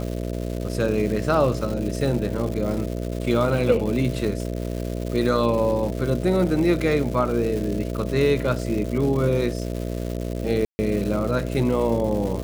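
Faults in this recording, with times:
buzz 60 Hz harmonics 11 -28 dBFS
crackle 350/s -29 dBFS
10.65–10.79 gap 0.14 s

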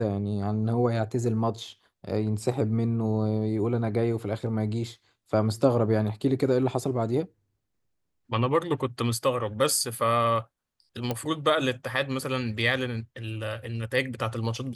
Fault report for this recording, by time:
11.11 pop -14 dBFS

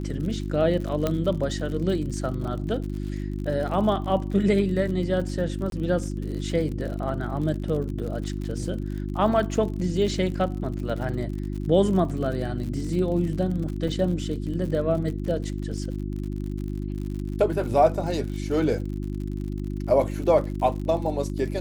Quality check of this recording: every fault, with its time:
crackle 61/s -33 dBFS
hum 50 Hz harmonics 7 -30 dBFS
1.07 pop -11 dBFS
5.7–5.72 gap 22 ms
13.88 gap 3.4 ms

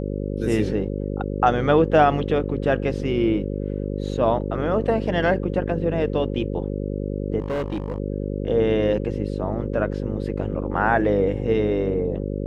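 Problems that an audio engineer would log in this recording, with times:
buzz 50 Hz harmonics 11 -27 dBFS
7.39–7.98 clipped -22 dBFS

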